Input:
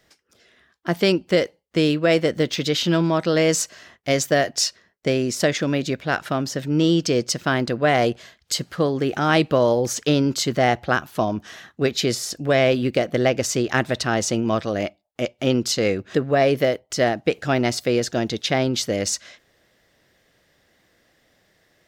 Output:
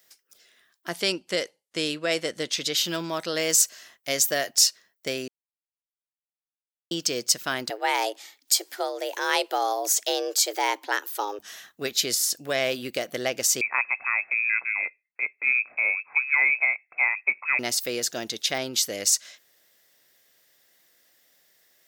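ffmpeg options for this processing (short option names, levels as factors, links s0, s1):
-filter_complex "[0:a]asettb=1/sr,asplit=3[s0][s1][s2];[s0]atrim=end=0.894[s3];[s1]atrim=start=0.89:end=2.77,asetpts=PTS-STARTPTS,afade=t=in:d=0.004:c=qsin,afade=t=out:st=1.876:d=0.004:c=qsin,lowpass=f=11000:w=0.5412,lowpass=f=11000:w=1.3066[s4];[s2]atrim=start=2.766[s5];[s3][s4]acrossfade=d=0.004:c1=hsin:c2=qsin[s6];[s6][s5]acrossfade=d=0.004:c1=qsin:c2=hsin,asettb=1/sr,asplit=3[s7][s8][s9];[s7]atrim=end=7.704[s10];[s8]atrim=start=7.7:end=11.39,asetpts=PTS-STARTPTS,afade=t=in:d=0.004:c=qsin,afade=t=out:st=3.686:d=0.004:c=qsin,afreqshift=200[s11];[s9]atrim=start=11.386[s12];[s10][s11]acrossfade=d=0.004:c1=hsin:c2=qsin[s13];[s13][s12]acrossfade=d=0.004:c1=qsin:c2=hsin,asettb=1/sr,asplit=3[s14][s15][s16];[s14]atrim=end=13.614[s17];[s15]atrim=start=13.61:end=17.59,asetpts=PTS-STARTPTS,afade=t=in:d=0.004:c=qsin,afade=t=out:st=3.976:d=0.004:c=qsin,lowpass=f=2300:t=q:w=0.5098,lowpass=f=2300:t=q:w=0.6013,lowpass=f=2300:t=q:w=0.9,lowpass=f=2300:t=q:w=2.563,afreqshift=-2700[s18];[s16]atrim=start=17.586[s19];[s17][s18]acrossfade=d=0.004:c1=hsin:c2=qsin[s20];[s20][s19]acrossfade=d=0.004:c1=qsin:c2=hsin,asplit=3[s21][s22][s23];[s21]atrim=end=5.28,asetpts=PTS-STARTPTS,afade=t=out:st=5.276:d=0.004:c=hsin[s24];[s22]atrim=start=5.28:end=6.91,asetpts=PTS-STARTPTS,volume=0[s25];[s23]atrim=start=6.91,asetpts=PTS-STARTPTS,afade=t=in:d=0.004:c=hsin[s26];[s24][s25][s26]concat=n=3:v=0:a=1,aemphasis=mode=production:type=riaa,volume=0.447"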